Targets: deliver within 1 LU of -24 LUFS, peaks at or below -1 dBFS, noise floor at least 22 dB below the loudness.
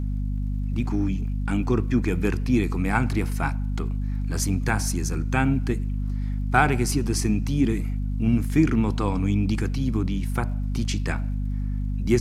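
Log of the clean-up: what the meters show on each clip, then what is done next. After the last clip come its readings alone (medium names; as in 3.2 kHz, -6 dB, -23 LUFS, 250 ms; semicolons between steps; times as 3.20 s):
tick rate 47 per s; hum 50 Hz; highest harmonic 250 Hz; hum level -24 dBFS; loudness -25.0 LUFS; peak level -3.5 dBFS; loudness target -24.0 LUFS
-> de-click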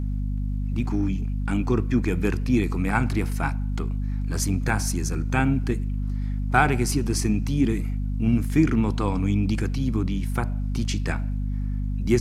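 tick rate 0.082 per s; hum 50 Hz; highest harmonic 250 Hz; hum level -24 dBFS
-> hum notches 50/100/150/200/250 Hz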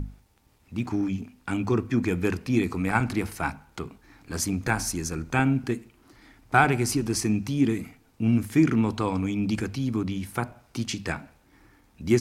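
hum not found; loudness -26.5 LUFS; peak level -4.5 dBFS; loudness target -24.0 LUFS
-> trim +2.5 dB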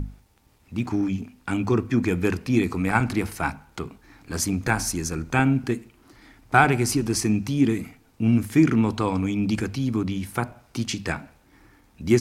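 loudness -24.0 LUFS; peak level -2.0 dBFS; noise floor -59 dBFS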